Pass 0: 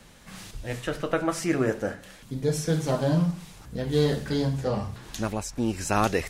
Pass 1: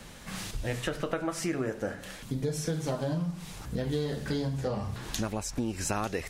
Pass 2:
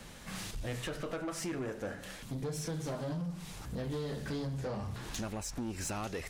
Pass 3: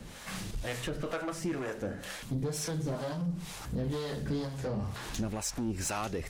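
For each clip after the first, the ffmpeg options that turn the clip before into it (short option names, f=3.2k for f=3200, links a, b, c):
-af "acompressor=threshold=-33dB:ratio=6,volume=4.5dB"
-af "asoftclip=type=tanh:threshold=-29.5dB,volume=-2.5dB"
-filter_complex "[0:a]acrossover=split=480[a][b];[a]aeval=exprs='val(0)*(1-0.7/2+0.7/2*cos(2*PI*2.1*n/s))':c=same[c];[b]aeval=exprs='val(0)*(1-0.7/2-0.7/2*cos(2*PI*2.1*n/s))':c=same[d];[c][d]amix=inputs=2:normalize=0,volume=6.5dB"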